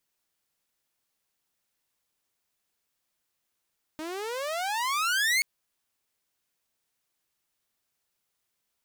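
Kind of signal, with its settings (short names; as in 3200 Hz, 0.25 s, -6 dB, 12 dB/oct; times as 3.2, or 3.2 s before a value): gliding synth tone saw, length 1.43 s, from 304 Hz, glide +34.5 st, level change +13 dB, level -18.5 dB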